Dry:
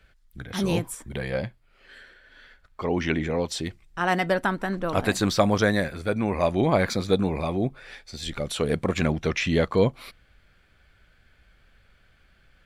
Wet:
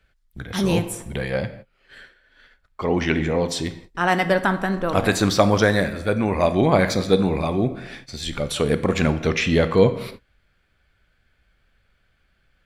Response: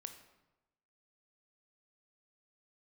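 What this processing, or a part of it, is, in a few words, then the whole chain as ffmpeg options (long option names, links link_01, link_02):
keyed gated reverb: -filter_complex "[0:a]asplit=3[link_01][link_02][link_03];[1:a]atrim=start_sample=2205[link_04];[link_02][link_04]afir=irnorm=-1:irlink=0[link_05];[link_03]apad=whole_len=557917[link_06];[link_05][link_06]sidechaingate=range=-33dB:threshold=-48dB:ratio=16:detection=peak,volume=11dB[link_07];[link_01][link_07]amix=inputs=2:normalize=0,volume=-5.5dB"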